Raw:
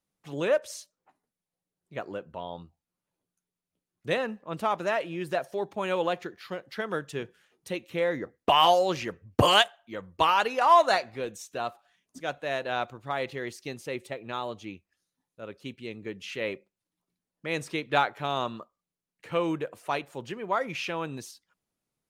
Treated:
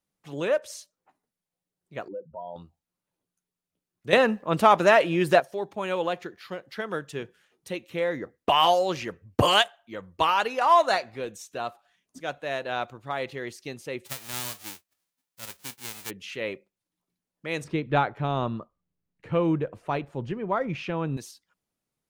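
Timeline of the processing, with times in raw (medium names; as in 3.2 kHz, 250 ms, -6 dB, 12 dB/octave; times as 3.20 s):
2.08–2.56 s: spectral contrast enhancement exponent 2.5
4.13–5.40 s: gain +10 dB
14.05–16.09 s: formants flattened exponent 0.1
17.64–21.17 s: RIAA curve playback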